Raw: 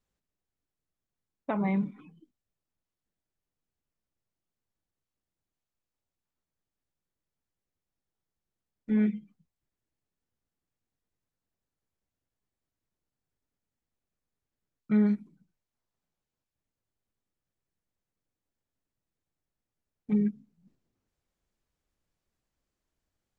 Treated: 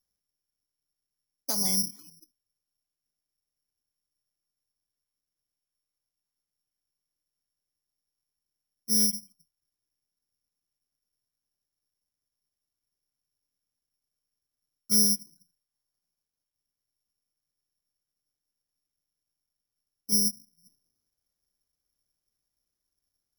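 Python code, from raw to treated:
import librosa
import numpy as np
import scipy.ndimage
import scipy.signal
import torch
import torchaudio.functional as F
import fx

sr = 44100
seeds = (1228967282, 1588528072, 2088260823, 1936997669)

y = (np.kron(scipy.signal.resample_poly(x, 1, 8), np.eye(8)[0]) * 8)[:len(x)]
y = y * 10.0 ** (-8.0 / 20.0)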